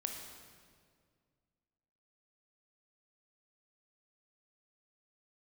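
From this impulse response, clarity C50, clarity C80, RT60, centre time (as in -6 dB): 4.0 dB, 5.5 dB, 2.0 s, 53 ms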